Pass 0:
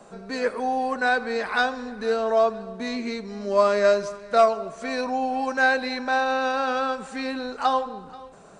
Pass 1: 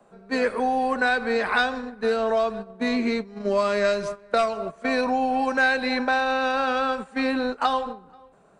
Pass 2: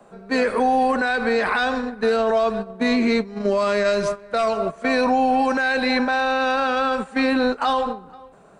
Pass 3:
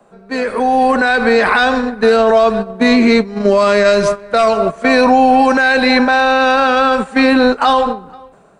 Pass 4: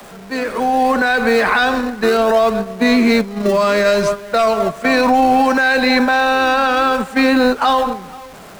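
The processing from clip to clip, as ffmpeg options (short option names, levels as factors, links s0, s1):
-filter_complex "[0:a]equalizer=f=5900:t=o:w=1.2:g=-9.5,agate=range=0.178:threshold=0.0251:ratio=16:detection=peak,acrossover=split=160|2100[s0][s1][s2];[s1]acompressor=threshold=0.0398:ratio=6[s3];[s0][s3][s2]amix=inputs=3:normalize=0,volume=2.24"
-af "alimiter=limit=0.112:level=0:latency=1:release=26,volume=2.24"
-af "dynaudnorm=f=290:g=5:m=3.35"
-filter_complex "[0:a]aeval=exprs='val(0)+0.5*0.0316*sgn(val(0))':c=same,acrossover=split=330|380|1900[s0][s1][s2][s3];[s1]acrusher=samples=38:mix=1:aa=0.000001:lfo=1:lforange=38:lforate=0.64[s4];[s0][s4][s2][s3]amix=inputs=4:normalize=0,volume=0.75"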